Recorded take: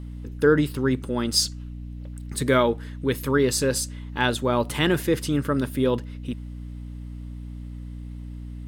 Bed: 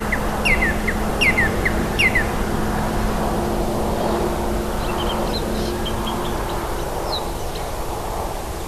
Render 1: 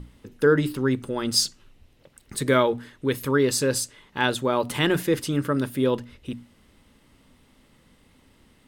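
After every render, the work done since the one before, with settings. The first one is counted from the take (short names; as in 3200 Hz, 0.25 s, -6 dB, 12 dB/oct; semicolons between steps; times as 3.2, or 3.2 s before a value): notches 60/120/180/240/300 Hz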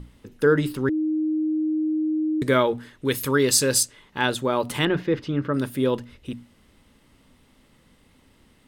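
0.89–2.42 bleep 311 Hz -20.5 dBFS; 3.05–3.83 high shelf 2600 Hz +8 dB; 4.85–5.54 air absorption 240 m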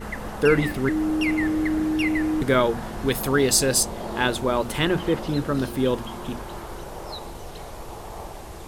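add bed -11.5 dB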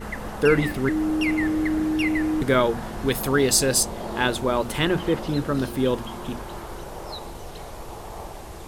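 nothing audible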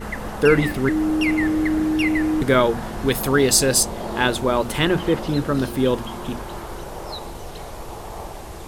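gain +3 dB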